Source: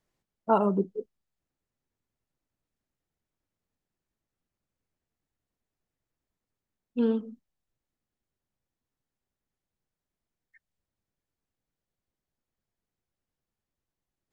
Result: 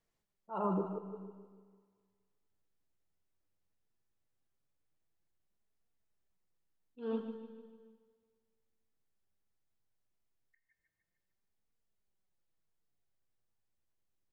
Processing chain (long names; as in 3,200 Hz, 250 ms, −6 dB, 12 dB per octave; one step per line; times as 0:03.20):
brickwall limiter −21.5 dBFS, peak gain reduction 11.5 dB
parametric band 240 Hz −4.5 dB 0.37 octaves
on a send: repeating echo 150 ms, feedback 52%, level −12 dB
on the sum: flanger 0.17 Hz, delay 4.2 ms, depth 7.1 ms, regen +60%
volume swells 185 ms
dynamic equaliser 990 Hz, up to +6 dB, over −54 dBFS, Q 0.8
four-comb reverb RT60 1.8 s, combs from 32 ms, DRR 11 dB